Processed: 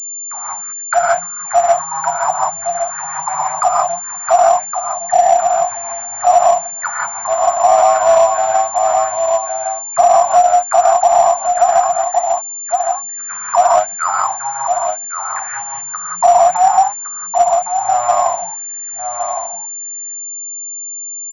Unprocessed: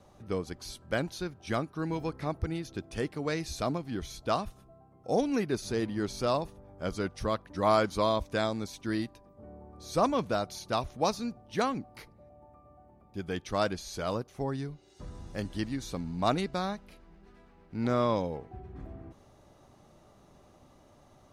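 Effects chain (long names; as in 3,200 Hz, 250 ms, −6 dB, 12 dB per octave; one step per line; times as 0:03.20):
adaptive Wiener filter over 41 samples
in parallel at −7 dB: wrap-around overflow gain 15 dB
on the sum: envelope filter 700–2,600 Hz, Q 19, down, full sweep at −24.5 dBFS
low-shelf EQ 150 Hz −10.5 dB
reverb whose tail is shaped and stops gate 210 ms rising, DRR −3.5 dB
automatic gain control gain up to 11 dB
log-companded quantiser 6 bits
elliptic band-stop filter 170–730 Hz, stop band 40 dB
parametric band 1,800 Hz +5.5 dB 1.8 octaves
on a send: single-tap delay 1,113 ms −7.5 dB
on the sum: boost into a limiter +18.5 dB
switching amplifier with a slow clock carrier 7,200 Hz
level −1 dB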